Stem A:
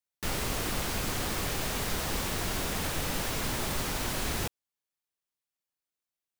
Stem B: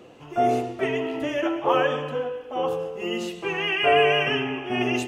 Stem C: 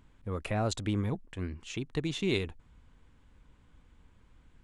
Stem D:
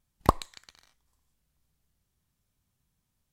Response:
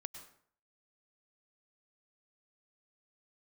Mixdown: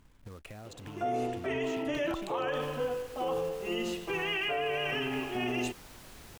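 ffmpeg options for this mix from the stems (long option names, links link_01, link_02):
-filter_complex "[0:a]adelay=1900,volume=-17.5dB[link_01];[1:a]adelay=650,volume=-11dB[link_02];[2:a]acompressor=threshold=-37dB:ratio=5,acrusher=bits=3:mode=log:mix=0:aa=0.000001,volume=-1dB,asplit=2[link_03][link_04];[3:a]adelay=1850,volume=-10.5dB[link_05];[link_04]apad=whole_len=365806[link_06];[link_01][link_06]sidechaincompress=threshold=-56dB:ratio=8:attack=16:release=105[link_07];[link_07][link_03]amix=inputs=2:normalize=0,acompressor=threshold=-46dB:ratio=2.5,volume=0dB[link_08];[link_02][link_05]amix=inputs=2:normalize=0,acontrast=78,alimiter=limit=-16dB:level=0:latency=1:release=385,volume=0dB[link_09];[link_08][link_09]amix=inputs=2:normalize=0,alimiter=limit=-24dB:level=0:latency=1:release=27"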